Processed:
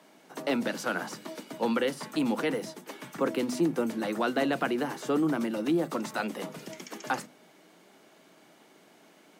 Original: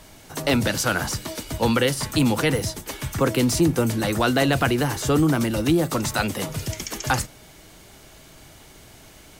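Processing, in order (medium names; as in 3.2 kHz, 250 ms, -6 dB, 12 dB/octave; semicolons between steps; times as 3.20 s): steep high-pass 180 Hz 36 dB/octave; treble shelf 3.3 kHz -11.5 dB; hum notches 50/100/150/200/250 Hz; trim -6 dB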